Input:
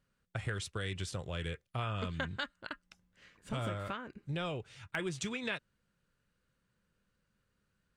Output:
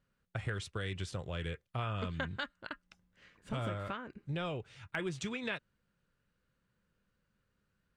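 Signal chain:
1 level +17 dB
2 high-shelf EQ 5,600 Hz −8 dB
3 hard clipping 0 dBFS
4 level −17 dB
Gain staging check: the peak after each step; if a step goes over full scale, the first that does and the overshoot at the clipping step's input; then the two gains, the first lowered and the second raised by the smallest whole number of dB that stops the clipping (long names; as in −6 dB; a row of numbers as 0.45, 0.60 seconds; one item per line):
−3.5, −4.5, −4.5, −21.5 dBFS
no step passes full scale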